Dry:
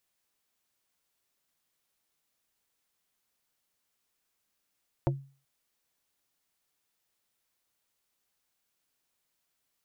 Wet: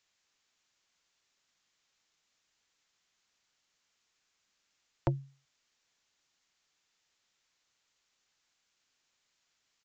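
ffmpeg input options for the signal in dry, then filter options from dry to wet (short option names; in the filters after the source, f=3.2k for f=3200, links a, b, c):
-f lavfi -i "aevalsrc='0.0794*pow(10,-3*t/0.38)*sin(2*PI*137*t)+0.0631*pow(10,-3*t/0.127)*sin(2*PI*342.5*t)+0.0501*pow(10,-3*t/0.072)*sin(2*PI*548*t)+0.0398*pow(10,-3*t/0.055)*sin(2*PI*685*t)+0.0316*pow(10,-3*t/0.04)*sin(2*PI*890.5*t)':d=0.38:s=44100"
-filter_complex "[0:a]acrossover=split=140|1200[a][b][c];[c]acontrast=55[d];[a][b][d]amix=inputs=3:normalize=0,aresample=16000,aresample=44100"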